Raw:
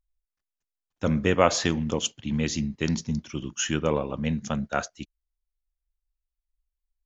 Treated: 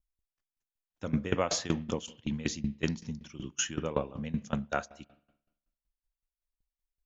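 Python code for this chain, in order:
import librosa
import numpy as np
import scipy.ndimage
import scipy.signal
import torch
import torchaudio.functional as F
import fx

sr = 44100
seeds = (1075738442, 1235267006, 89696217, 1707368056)

y = fx.rev_spring(x, sr, rt60_s=1.0, pass_ms=(42, 56), chirp_ms=75, drr_db=19.5)
y = fx.tremolo_decay(y, sr, direction='decaying', hz=5.3, depth_db=19)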